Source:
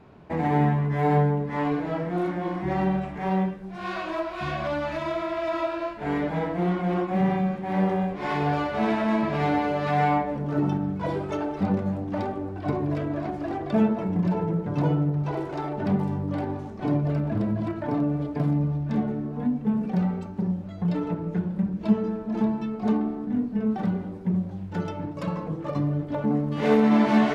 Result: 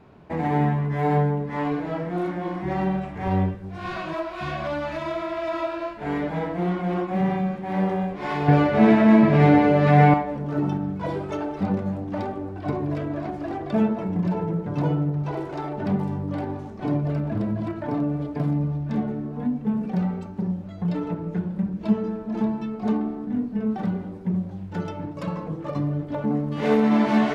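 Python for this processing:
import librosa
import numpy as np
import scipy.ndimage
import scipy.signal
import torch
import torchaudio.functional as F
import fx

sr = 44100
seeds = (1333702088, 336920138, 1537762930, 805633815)

y = fx.octave_divider(x, sr, octaves=1, level_db=0.0, at=(3.15, 4.14))
y = fx.graphic_eq_10(y, sr, hz=(125, 250, 500, 2000), db=(12, 7, 7, 6), at=(8.48, 10.14))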